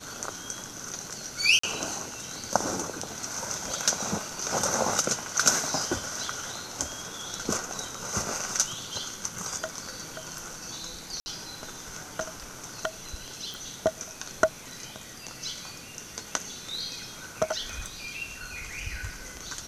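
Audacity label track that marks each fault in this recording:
1.590000	1.630000	gap 44 ms
11.200000	11.260000	gap 60 ms
13.540000	13.540000	pop
17.610000	18.050000	clipped -28.5 dBFS

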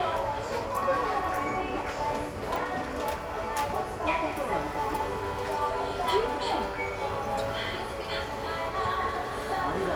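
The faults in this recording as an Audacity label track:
2.560000	2.560000	pop

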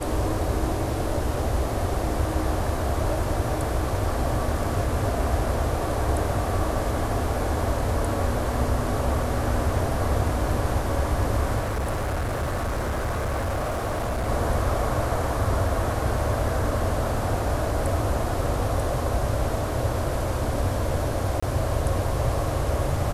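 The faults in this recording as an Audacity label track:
11.590000	14.290000	clipped -23 dBFS
21.400000	21.430000	gap 25 ms

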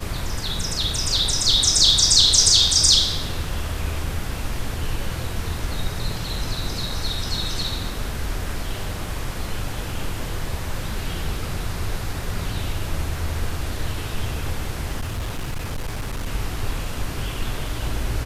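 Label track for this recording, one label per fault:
15.000000	16.260000	clipped -23 dBFS

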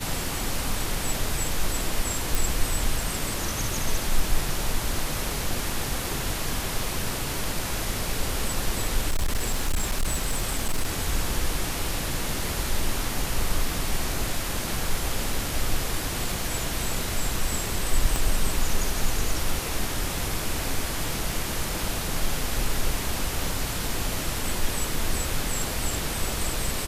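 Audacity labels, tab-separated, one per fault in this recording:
2.350000	2.350000	pop
9.090000	10.890000	clipped -19.5 dBFS
18.160000	18.160000	pop

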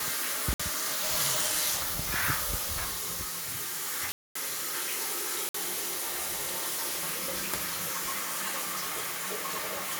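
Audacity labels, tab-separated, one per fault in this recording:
0.540000	0.590000	gap 55 ms
4.120000	4.350000	gap 0.234 s
5.490000	5.540000	gap 54 ms

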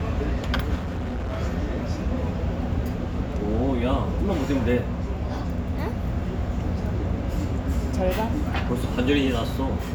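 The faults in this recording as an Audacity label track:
0.750000	1.400000	clipped -25.5 dBFS

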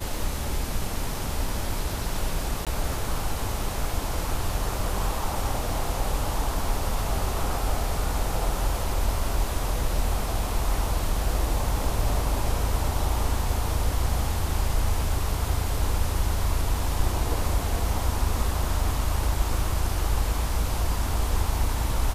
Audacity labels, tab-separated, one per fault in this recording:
2.650000	2.670000	gap 17 ms

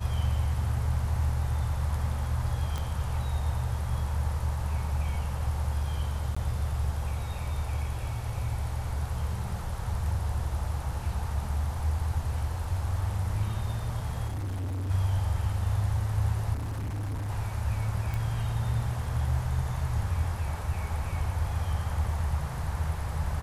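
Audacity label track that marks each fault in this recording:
2.780000	2.780000	pop -21 dBFS
6.350000	6.370000	gap 15 ms
14.280000	14.910000	clipped -30 dBFS
16.530000	17.300000	clipped -30 dBFS
18.140000	18.140000	pop

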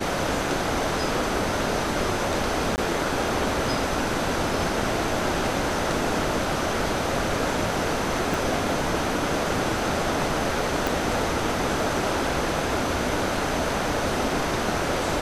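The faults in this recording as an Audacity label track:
2.760000	2.780000	gap 19 ms
8.340000	8.340000	pop
10.870000	10.870000	pop

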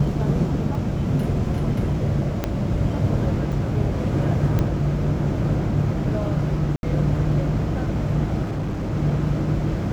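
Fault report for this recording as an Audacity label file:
0.750000	0.750000	gap 2.1 ms
2.440000	2.440000	pop -9 dBFS
3.520000	3.520000	gap 4.3 ms
4.590000	4.590000	pop -11 dBFS
6.760000	6.830000	gap 71 ms
8.420000	8.940000	clipped -22 dBFS

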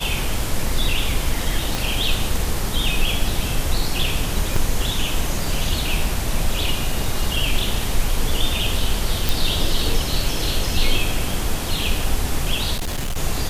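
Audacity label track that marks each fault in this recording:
1.750000	1.750000	pop
4.560000	4.560000	gap 3.9 ms
9.290000	9.290000	pop
12.750000	13.180000	clipped -20.5 dBFS

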